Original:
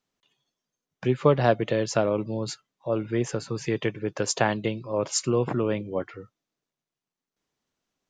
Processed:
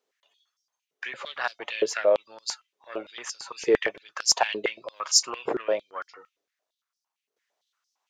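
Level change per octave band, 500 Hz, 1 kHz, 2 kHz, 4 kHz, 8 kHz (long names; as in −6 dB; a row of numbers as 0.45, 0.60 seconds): −2.0, −2.0, +2.5, +8.0, +5.5 decibels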